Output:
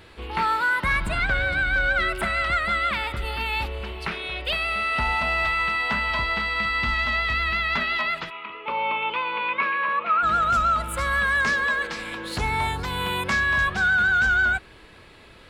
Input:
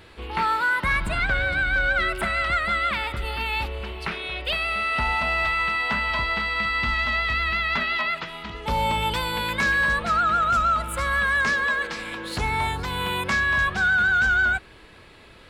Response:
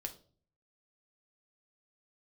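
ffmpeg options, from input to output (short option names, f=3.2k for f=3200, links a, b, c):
-filter_complex "[0:a]asplit=3[a][b][c];[a]afade=t=out:st=8.29:d=0.02[d];[b]highpass=430,equalizer=f=760:t=q:w=4:g=-9,equalizer=f=1.1k:t=q:w=4:g=8,equalizer=f=1.7k:t=q:w=4:g=-8,equalizer=f=2.5k:t=q:w=4:g=9,lowpass=f=2.7k:w=0.5412,lowpass=f=2.7k:w=1.3066,afade=t=in:st=8.29:d=0.02,afade=t=out:st=10.22:d=0.02[e];[c]afade=t=in:st=10.22:d=0.02[f];[d][e][f]amix=inputs=3:normalize=0"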